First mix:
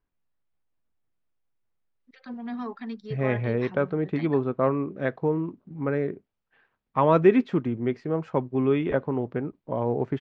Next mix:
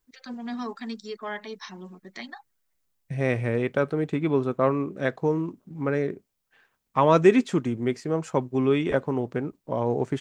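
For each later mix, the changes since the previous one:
first voice: entry -2.00 s; master: remove air absorption 320 m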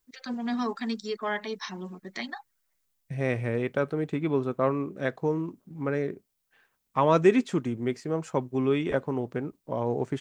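first voice +3.5 dB; second voice -3.0 dB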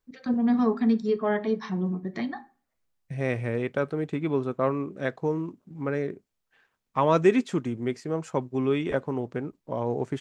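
first voice: add tilt -4.5 dB/oct; reverb: on, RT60 0.40 s

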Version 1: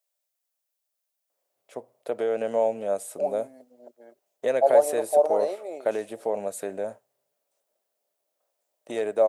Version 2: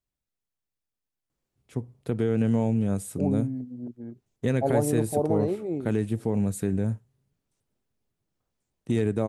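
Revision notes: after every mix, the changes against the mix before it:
second voice: add tilt -4 dB/oct; master: remove resonant high-pass 600 Hz, resonance Q 5.4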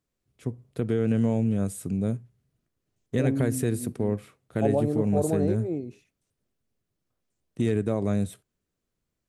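first voice: entry -1.30 s; master: add bell 860 Hz -6 dB 0.29 oct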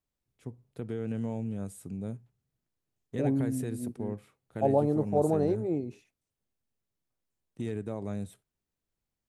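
first voice -10.0 dB; master: add bell 860 Hz +6 dB 0.29 oct

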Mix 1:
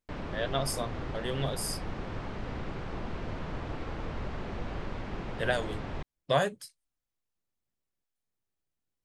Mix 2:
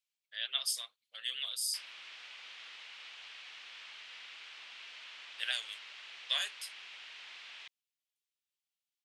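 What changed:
background: entry +1.65 s; master: add resonant high-pass 2900 Hz, resonance Q 1.9

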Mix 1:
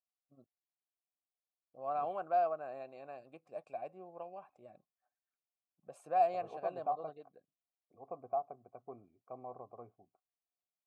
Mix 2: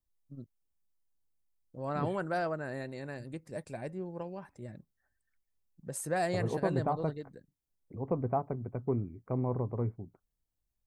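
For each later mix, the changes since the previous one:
first voice -6.0 dB; master: remove vowel filter a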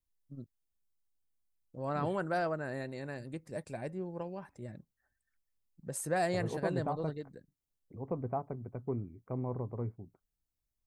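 second voice -4.5 dB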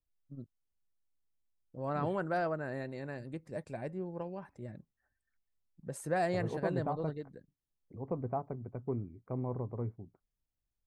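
master: add high shelf 4800 Hz -10 dB

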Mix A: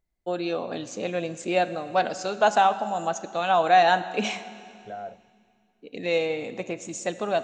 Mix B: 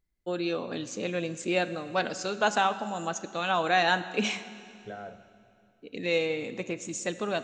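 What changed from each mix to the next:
second voice: send on; master: add bell 710 Hz -9 dB 0.72 oct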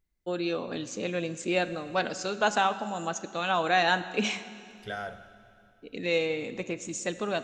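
second voice: remove band-pass 290 Hz, Q 0.61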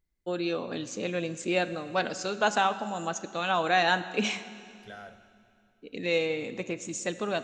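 second voice -9.0 dB

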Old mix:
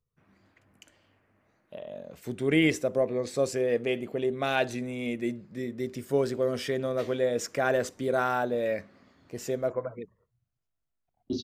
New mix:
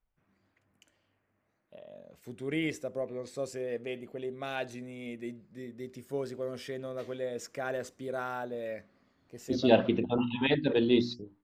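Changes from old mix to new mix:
first voice -9.0 dB; second voice: entry -1.80 s

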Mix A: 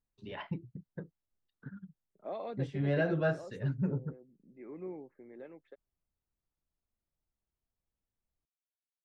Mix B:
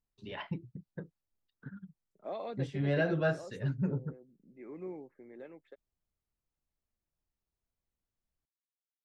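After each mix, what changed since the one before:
master: add high shelf 3000 Hz +6 dB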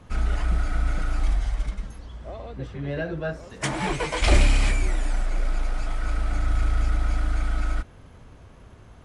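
background: unmuted

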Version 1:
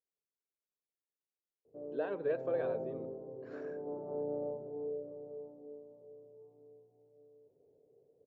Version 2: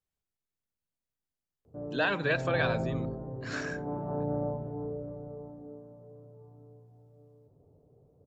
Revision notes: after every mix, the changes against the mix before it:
master: remove band-pass 450 Hz, Q 2.9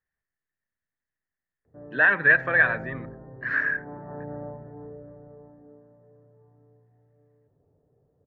background -5.5 dB; master: add synth low-pass 1800 Hz, resonance Q 10

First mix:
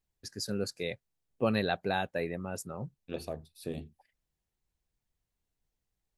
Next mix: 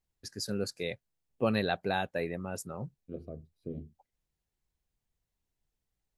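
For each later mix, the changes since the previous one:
second voice: add running mean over 50 samples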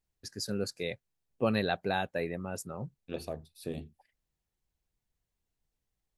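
second voice: remove running mean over 50 samples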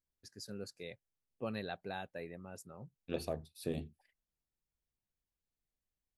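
first voice -11.5 dB

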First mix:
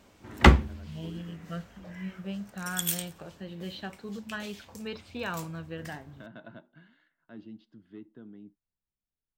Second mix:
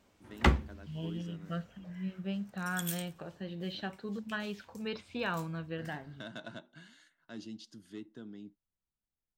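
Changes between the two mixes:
first voice: remove air absorption 490 m; background -9.0 dB

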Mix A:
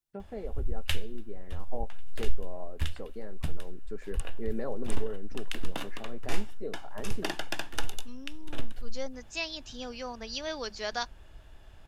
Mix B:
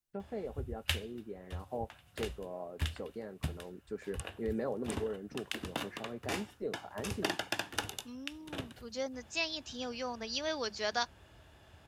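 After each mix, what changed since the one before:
background: add HPF 69 Hz 24 dB/oct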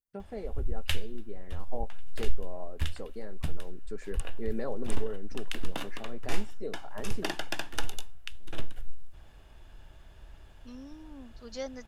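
first voice: add high shelf 4200 Hz +9.5 dB; second voice: entry +2.60 s; background: remove HPF 69 Hz 24 dB/oct

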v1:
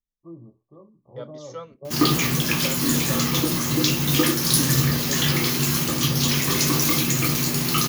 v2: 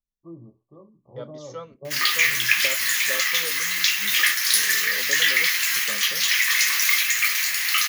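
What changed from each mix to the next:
background: add resonant high-pass 1900 Hz, resonance Q 4.4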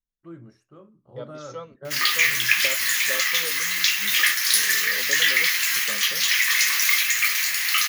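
first voice: remove brick-wall FIR low-pass 1200 Hz

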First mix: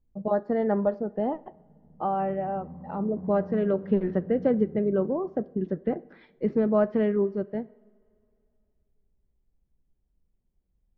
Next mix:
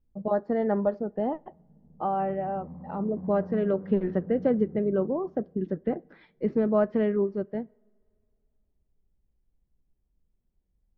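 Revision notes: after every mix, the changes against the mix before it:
speech: send -8.5 dB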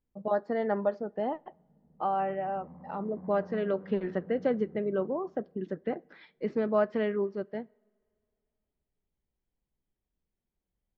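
master: add tilt +3 dB/oct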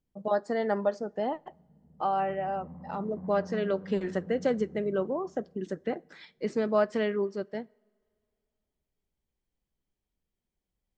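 speech: remove air absorption 310 m; background: add low shelf 140 Hz +11.5 dB

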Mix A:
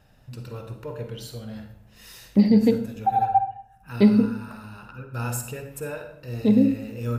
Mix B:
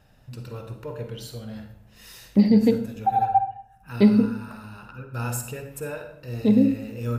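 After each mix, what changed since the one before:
none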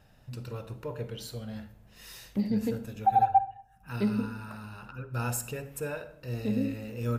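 first voice: send -8.5 dB; second voice -12.0 dB

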